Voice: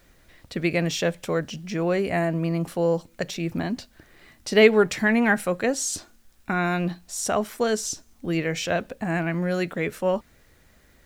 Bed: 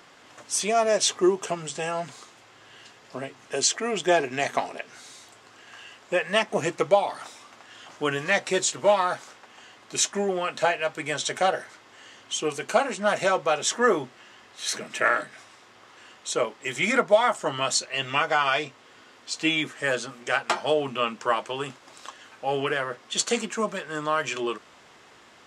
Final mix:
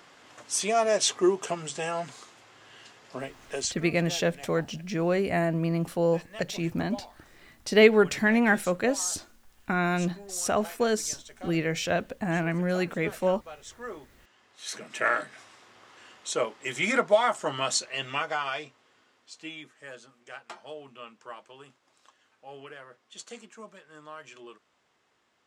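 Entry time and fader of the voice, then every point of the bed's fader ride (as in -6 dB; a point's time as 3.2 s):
3.20 s, -2.0 dB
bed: 3.49 s -2 dB
3.98 s -20.5 dB
13.71 s -20.5 dB
15.14 s -2.5 dB
17.75 s -2.5 dB
19.72 s -18.5 dB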